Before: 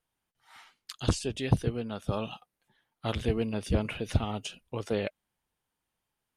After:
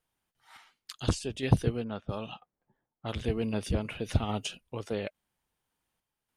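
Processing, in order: 1.84–3.24 low-pass opened by the level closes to 680 Hz, open at -26.5 dBFS; random-step tremolo; gain +2.5 dB

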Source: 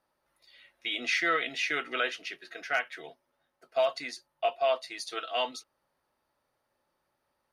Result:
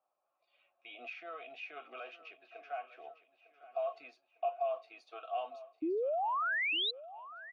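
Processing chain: high shelf 3600 Hz -11.5 dB; limiter -27.5 dBFS, peak gain reduction 9.5 dB; vowel filter a; painted sound rise, 5.82–6.91, 300–4100 Hz -37 dBFS; feedback echo 0.903 s, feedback 47%, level -16 dB; gain +4 dB

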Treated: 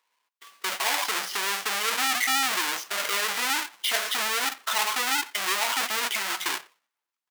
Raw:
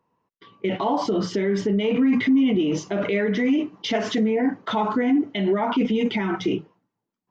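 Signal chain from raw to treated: half-waves squared off; HPF 1300 Hz 12 dB/oct; speakerphone echo 90 ms, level -21 dB

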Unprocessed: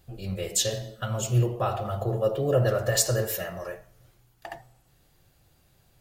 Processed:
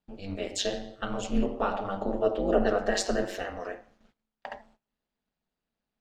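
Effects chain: gate -56 dBFS, range -20 dB; HPF 61 Hz 12 dB/oct; low shelf 330 Hz -5 dB; ring modulator 99 Hz; air absorption 140 m; gain +4 dB

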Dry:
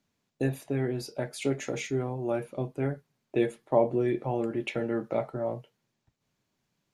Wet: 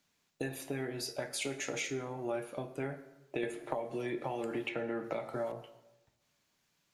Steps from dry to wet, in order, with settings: tilt shelf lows -5.5 dB, about 720 Hz; compressor, threshold -34 dBFS, peak gain reduction 14.5 dB; plate-style reverb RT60 0.99 s, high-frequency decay 0.6×, DRR 8.5 dB; 3.43–5.52 three-band squash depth 100%

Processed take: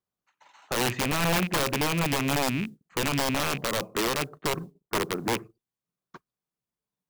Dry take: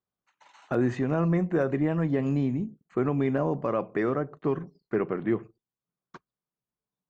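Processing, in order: rattling part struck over -33 dBFS, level -23 dBFS; 4.49–5.33 LPF 1400 Hz 24 dB/oct; modulation noise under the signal 32 dB; wrapped overs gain 19.5 dB

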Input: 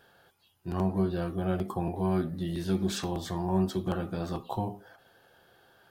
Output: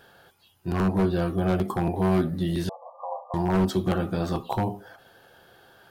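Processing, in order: 2.69–3.34 brick-wall FIR band-pass 490–1200 Hz; wavefolder -21.5 dBFS; gain +6.5 dB

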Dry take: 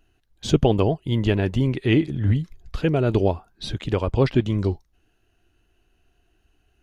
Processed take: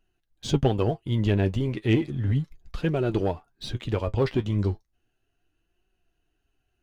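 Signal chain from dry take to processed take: sample leveller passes 1; flange 0.34 Hz, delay 5.2 ms, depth 5.3 ms, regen +50%; gain -3.5 dB

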